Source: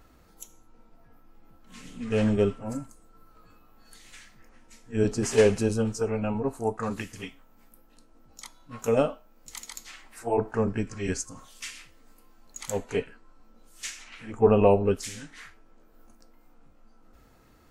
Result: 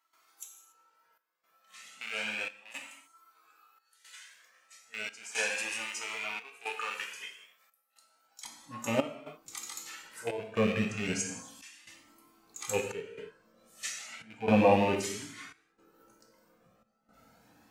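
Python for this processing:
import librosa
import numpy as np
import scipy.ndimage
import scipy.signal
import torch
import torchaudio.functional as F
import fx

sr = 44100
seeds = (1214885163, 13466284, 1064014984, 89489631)

y = fx.rattle_buzz(x, sr, strikes_db=-35.0, level_db=-23.0)
y = fx.rev_gated(y, sr, seeds[0], gate_ms=310, shape='falling', drr_db=2.0)
y = fx.step_gate(y, sr, bpm=115, pattern='.xxxxxxxx.', floor_db=-12.0, edge_ms=4.5)
y = fx.highpass(y, sr, hz=fx.steps((0.0, 1100.0), (8.45, 150.0)), slope=12)
y = fx.comb_cascade(y, sr, direction='rising', hz=0.33)
y = y * librosa.db_to_amplitude(2.0)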